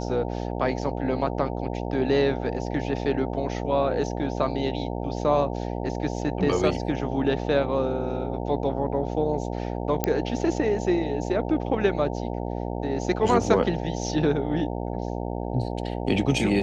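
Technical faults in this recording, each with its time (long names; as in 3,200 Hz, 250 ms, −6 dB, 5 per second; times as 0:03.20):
mains buzz 60 Hz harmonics 15 −30 dBFS
0:10.04: click −7 dBFS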